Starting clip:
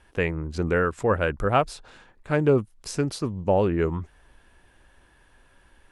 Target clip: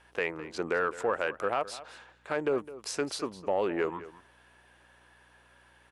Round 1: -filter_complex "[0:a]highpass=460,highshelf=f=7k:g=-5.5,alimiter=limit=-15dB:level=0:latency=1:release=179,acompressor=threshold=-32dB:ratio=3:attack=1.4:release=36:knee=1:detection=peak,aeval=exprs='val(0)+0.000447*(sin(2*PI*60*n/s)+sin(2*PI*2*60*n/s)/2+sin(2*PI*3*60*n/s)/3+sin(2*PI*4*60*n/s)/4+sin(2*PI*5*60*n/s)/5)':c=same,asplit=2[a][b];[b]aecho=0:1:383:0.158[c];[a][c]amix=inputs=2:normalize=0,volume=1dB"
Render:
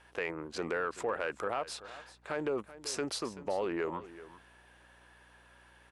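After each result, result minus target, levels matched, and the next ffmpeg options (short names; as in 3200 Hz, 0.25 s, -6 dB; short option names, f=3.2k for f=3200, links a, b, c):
echo 0.174 s late; compressor: peak gain reduction +5 dB
-filter_complex "[0:a]highpass=460,highshelf=f=7k:g=-5.5,alimiter=limit=-15dB:level=0:latency=1:release=179,acompressor=threshold=-32dB:ratio=3:attack=1.4:release=36:knee=1:detection=peak,aeval=exprs='val(0)+0.000447*(sin(2*PI*60*n/s)+sin(2*PI*2*60*n/s)/2+sin(2*PI*3*60*n/s)/3+sin(2*PI*4*60*n/s)/4+sin(2*PI*5*60*n/s)/5)':c=same,asplit=2[a][b];[b]aecho=0:1:209:0.158[c];[a][c]amix=inputs=2:normalize=0,volume=1dB"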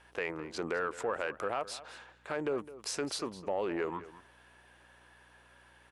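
compressor: peak gain reduction +5 dB
-filter_complex "[0:a]highpass=460,highshelf=f=7k:g=-5.5,alimiter=limit=-15dB:level=0:latency=1:release=179,acompressor=threshold=-24.5dB:ratio=3:attack=1.4:release=36:knee=1:detection=peak,aeval=exprs='val(0)+0.000447*(sin(2*PI*60*n/s)+sin(2*PI*2*60*n/s)/2+sin(2*PI*3*60*n/s)/3+sin(2*PI*4*60*n/s)/4+sin(2*PI*5*60*n/s)/5)':c=same,asplit=2[a][b];[b]aecho=0:1:209:0.158[c];[a][c]amix=inputs=2:normalize=0,volume=1dB"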